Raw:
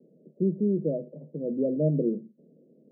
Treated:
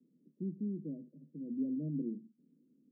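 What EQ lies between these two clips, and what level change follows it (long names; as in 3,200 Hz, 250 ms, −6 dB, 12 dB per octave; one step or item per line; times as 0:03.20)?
formant resonators in series i
low-shelf EQ 140 Hz +8 dB
−7.0 dB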